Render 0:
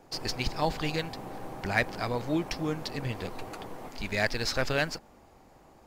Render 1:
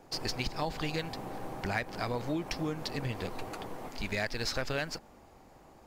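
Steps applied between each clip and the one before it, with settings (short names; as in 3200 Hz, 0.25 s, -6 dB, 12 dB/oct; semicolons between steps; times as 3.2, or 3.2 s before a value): compressor 6:1, threshold -29 dBFS, peak gain reduction 9.5 dB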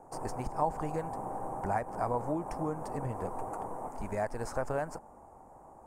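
EQ curve 340 Hz 0 dB, 920 Hz +9 dB, 3900 Hz -28 dB, 8800 Hz +5 dB, 13000 Hz -8 dB; gain -1.5 dB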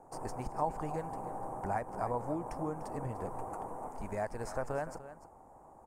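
echo 0.296 s -14 dB; gain -3 dB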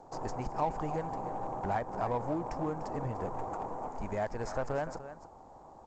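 in parallel at -6 dB: hard clip -35.5 dBFS, distortion -8 dB; on the sum: G.722 64 kbps 16000 Hz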